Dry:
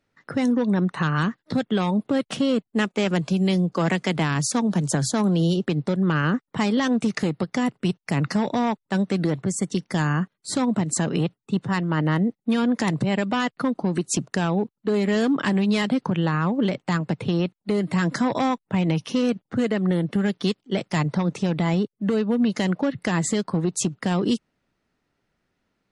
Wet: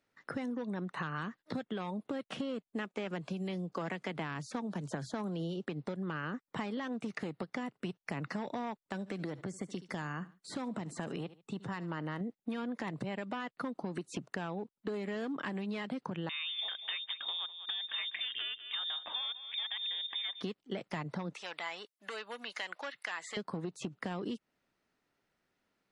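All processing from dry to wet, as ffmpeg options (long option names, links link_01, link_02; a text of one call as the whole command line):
ffmpeg -i in.wav -filter_complex "[0:a]asettb=1/sr,asplit=3[link_01][link_02][link_03];[link_01]atrim=end=8.884[link_04];[link_02]atrim=start=8.88:end=12.21,asetpts=PTS-STARTPTS,afade=type=in:duration=0.004:curve=qsin,afade=type=out:start_time=3.326:duration=0.004:curve=qsin,aecho=1:1:72|144:0.0708|0.0184,atrim=end_sample=146853,acompressor=threshold=-26dB:ratio=2:attack=3.2:release=140:knee=1:detection=peak[link_05];[link_03]atrim=start=12.206[link_06];[link_04][link_05]acrossfade=duration=0.004:curve1=hsin:curve2=qsin[link_07];[link_07][link_06]acrossfade=duration=0.004:curve1=qsin:curve2=hsin,asettb=1/sr,asplit=3[link_08][link_09][link_10];[link_08]atrim=end=16.294[link_11];[link_09]atrim=start=16.29:end=20.41,asetpts=PTS-STARTPTS,afade=type=in:duration=0.004:curve=qsin,afade=type=out:start_time=4.116:duration=0.004:curve=qsin,lowpass=frequency=3200:width_type=q:width=0.5098,lowpass=frequency=3200:width_type=q:width=0.6013,lowpass=frequency=3200:width_type=q:width=0.9,lowpass=frequency=3200:width_type=q:width=2.563,afreqshift=-3800,aecho=1:1:197|394:0.133|0.02,atrim=end_sample=181692[link_12];[link_10]atrim=start=20.406[link_13];[link_11][link_12]acrossfade=duration=0.004:curve1=hsin:curve2=qsin[link_14];[link_14][link_13]acrossfade=duration=0.004:curve1=qsin:curve2=hsin,asettb=1/sr,asplit=3[link_15][link_16][link_17];[link_15]atrim=end=21.344[link_18];[link_16]atrim=start=21.34:end=23.37,asetpts=PTS-STARTPTS,afade=type=in:duration=0.004:curve=qsin,afade=type=out:start_time=2.026:duration=0.004:curve=qsin,highpass=820,tiltshelf=frequency=1400:gain=-5[link_19];[link_17]atrim=start=23.366[link_20];[link_18][link_19]acrossfade=duration=0.004:curve1=hsin:curve2=qsin[link_21];[link_21][link_20]acrossfade=duration=0.004:curve1=qsin:curve2=hsin,acrossover=split=3200[link_22][link_23];[link_23]acompressor=threshold=-47dB:ratio=4:attack=1:release=60[link_24];[link_22][link_24]amix=inputs=2:normalize=0,lowshelf=frequency=200:gain=-10,acompressor=threshold=-31dB:ratio=6,volume=-4dB" out.wav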